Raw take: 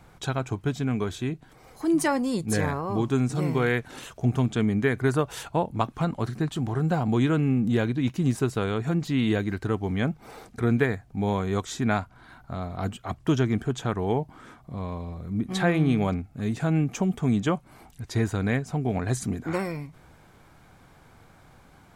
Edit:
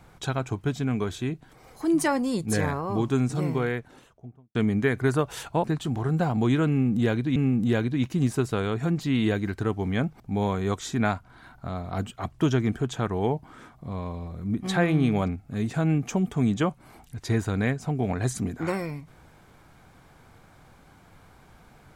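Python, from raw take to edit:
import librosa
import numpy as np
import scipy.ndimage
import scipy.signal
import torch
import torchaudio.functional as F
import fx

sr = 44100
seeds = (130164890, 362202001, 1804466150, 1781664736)

y = fx.studio_fade_out(x, sr, start_s=3.2, length_s=1.35)
y = fx.edit(y, sr, fx.cut(start_s=5.64, length_s=0.71),
    fx.repeat(start_s=7.4, length_s=0.67, count=2),
    fx.cut(start_s=10.24, length_s=0.82), tone=tone)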